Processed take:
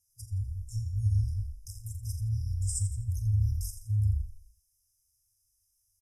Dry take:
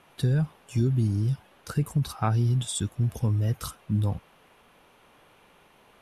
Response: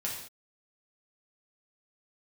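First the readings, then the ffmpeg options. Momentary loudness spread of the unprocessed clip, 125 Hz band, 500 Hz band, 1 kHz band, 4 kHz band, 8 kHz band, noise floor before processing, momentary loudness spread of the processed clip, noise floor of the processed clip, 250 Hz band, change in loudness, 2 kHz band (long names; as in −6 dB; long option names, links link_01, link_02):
6 LU, −4.5 dB, below −40 dB, below −40 dB, −13.5 dB, −1.5 dB, −59 dBFS, 11 LU, −75 dBFS, below −20 dB, −4.5 dB, below −40 dB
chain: -filter_complex "[0:a]afwtdn=0.0316,tiltshelf=frequency=970:gain=-5.5,asplit=6[link_01][link_02][link_03][link_04][link_05][link_06];[link_02]adelay=84,afreqshift=-31,volume=-9.5dB[link_07];[link_03]adelay=168,afreqshift=-62,volume=-17dB[link_08];[link_04]adelay=252,afreqshift=-93,volume=-24.6dB[link_09];[link_05]adelay=336,afreqshift=-124,volume=-32.1dB[link_10];[link_06]adelay=420,afreqshift=-155,volume=-39.6dB[link_11];[link_01][link_07][link_08][link_09][link_10][link_11]amix=inputs=6:normalize=0,asplit=2[link_12][link_13];[link_13]acompressor=threshold=-32dB:ratio=6,volume=2dB[link_14];[link_12][link_14]amix=inputs=2:normalize=0,asplit=2[link_15][link_16];[link_16]adelay=42,volume=-11.5dB[link_17];[link_15][link_17]amix=inputs=2:normalize=0,afftfilt=real='re*(1-between(b*sr/4096,110,4900))':imag='im*(1-between(b*sr/4096,110,4900))':win_size=4096:overlap=0.75,volume=2dB"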